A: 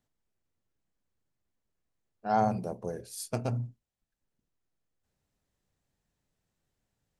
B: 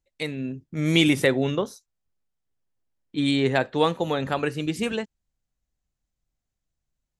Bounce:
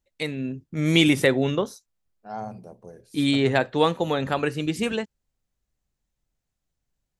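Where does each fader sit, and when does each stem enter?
-8.0 dB, +1.0 dB; 0.00 s, 0.00 s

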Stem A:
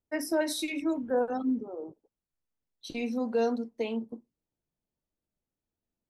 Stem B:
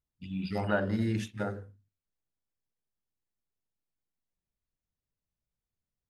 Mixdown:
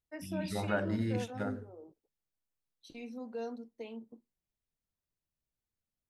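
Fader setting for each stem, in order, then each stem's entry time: -12.5 dB, -3.5 dB; 0.00 s, 0.00 s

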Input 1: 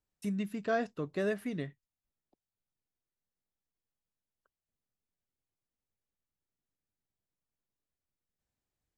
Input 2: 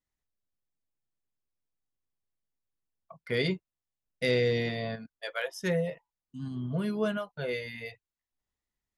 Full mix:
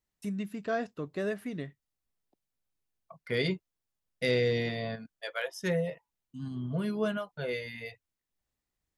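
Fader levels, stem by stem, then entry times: -0.5 dB, -1.0 dB; 0.00 s, 0.00 s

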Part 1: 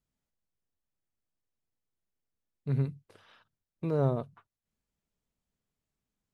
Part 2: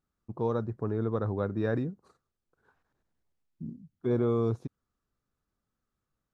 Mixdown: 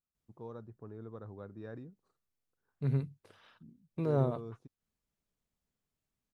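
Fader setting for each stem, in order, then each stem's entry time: -2.0 dB, -16.5 dB; 0.15 s, 0.00 s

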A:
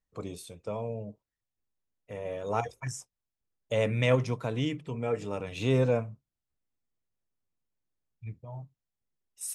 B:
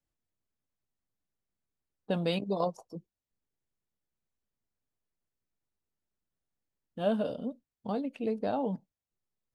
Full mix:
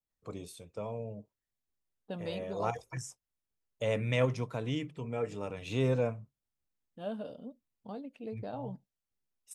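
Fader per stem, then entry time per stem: -4.0 dB, -9.5 dB; 0.10 s, 0.00 s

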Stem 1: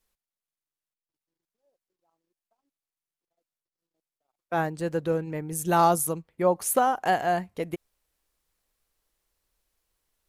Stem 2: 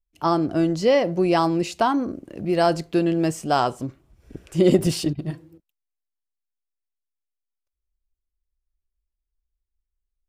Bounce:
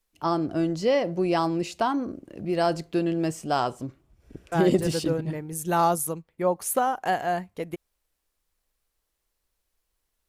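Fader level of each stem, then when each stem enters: -1.5 dB, -4.5 dB; 0.00 s, 0.00 s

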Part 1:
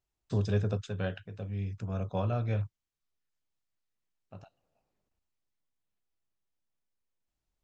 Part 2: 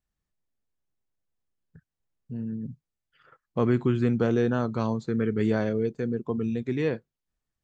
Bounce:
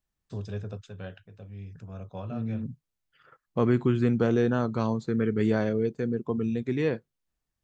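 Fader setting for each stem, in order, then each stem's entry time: -6.5 dB, 0.0 dB; 0.00 s, 0.00 s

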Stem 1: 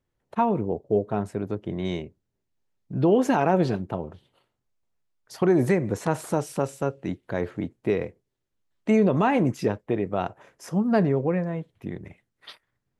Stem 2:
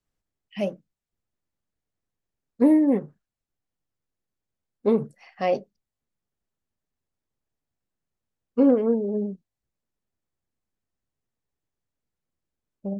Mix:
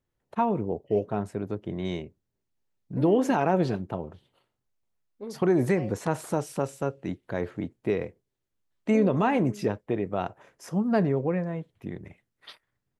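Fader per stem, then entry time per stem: -2.5 dB, -18.0 dB; 0.00 s, 0.35 s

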